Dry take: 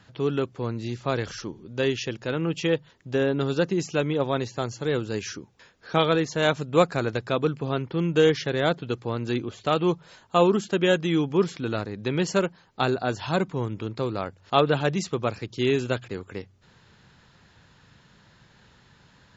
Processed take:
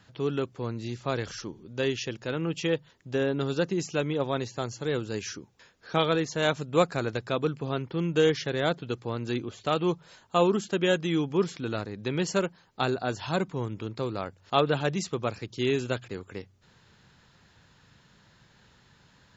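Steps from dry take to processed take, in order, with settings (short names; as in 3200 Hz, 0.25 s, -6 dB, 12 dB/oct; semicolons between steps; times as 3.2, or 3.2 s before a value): high shelf 6200 Hz +5 dB; gain -3.5 dB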